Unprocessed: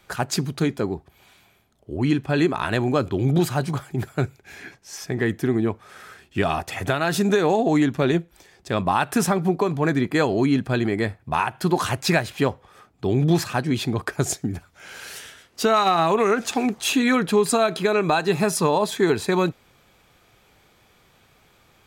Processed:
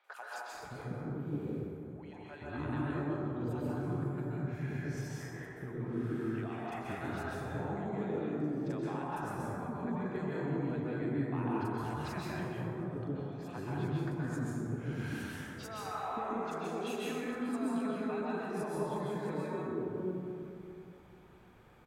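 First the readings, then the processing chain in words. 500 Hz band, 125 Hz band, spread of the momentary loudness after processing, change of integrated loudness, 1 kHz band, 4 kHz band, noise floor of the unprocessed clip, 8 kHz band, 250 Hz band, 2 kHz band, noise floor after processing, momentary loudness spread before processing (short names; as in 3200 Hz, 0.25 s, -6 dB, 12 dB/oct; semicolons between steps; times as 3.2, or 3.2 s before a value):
-16.0 dB, -12.0 dB, 8 LU, -15.5 dB, -16.0 dB, -22.5 dB, -59 dBFS, -23.5 dB, -13.5 dB, -17.0 dB, -53 dBFS, 11 LU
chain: high shelf 2000 Hz -11 dB; compressor 3:1, threshold -37 dBFS, peak gain reduction 16.5 dB; three bands offset in time mids, highs, lows 40/530 ms, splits 560/4900 Hz; plate-style reverb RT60 2.7 s, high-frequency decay 0.35×, pre-delay 0.115 s, DRR -6.5 dB; gain -7.5 dB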